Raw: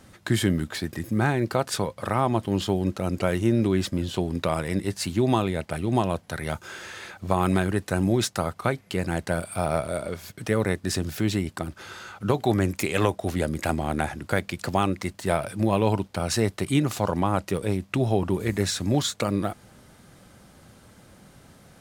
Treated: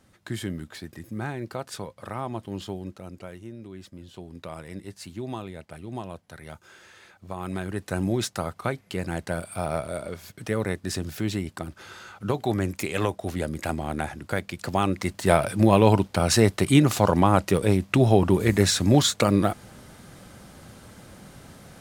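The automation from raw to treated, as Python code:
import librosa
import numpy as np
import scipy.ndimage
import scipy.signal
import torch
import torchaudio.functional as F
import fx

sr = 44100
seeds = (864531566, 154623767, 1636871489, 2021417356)

y = fx.gain(x, sr, db=fx.line((2.68, -9.0), (3.58, -20.0), (4.6, -12.0), (7.36, -12.0), (7.93, -3.0), (14.57, -3.0), (15.3, 5.0)))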